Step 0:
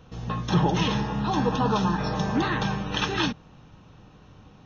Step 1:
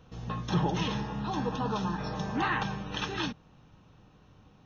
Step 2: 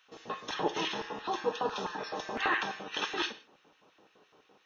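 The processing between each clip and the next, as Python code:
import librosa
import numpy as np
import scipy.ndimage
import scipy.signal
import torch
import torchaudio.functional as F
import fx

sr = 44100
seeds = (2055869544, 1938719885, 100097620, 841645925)

y1 = fx.spec_box(x, sr, start_s=2.39, length_s=0.24, low_hz=710.0, high_hz=3200.0, gain_db=7)
y1 = fx.rider(y1, sr, range_db=4, speed_s=2.0)
y1 = y1 * 10.0 ** (-7.5 / 20.0)
y2 = fx.filter_lfo_highpass(y1, sr, shape='square', hz=5.9, low_hz=410.0, high_hz=1900.0, q=1.6)
y2 = fx.rev_gated(y2, sr, seeds[0], gate_ms=190, shape='falling', drr_db=10.5)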